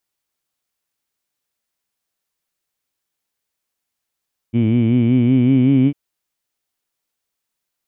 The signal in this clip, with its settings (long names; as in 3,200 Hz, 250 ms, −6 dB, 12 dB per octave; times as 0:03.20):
vowel by formant synthesis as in heed, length 1.40 s, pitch 112 Hz, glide +3.5 semitones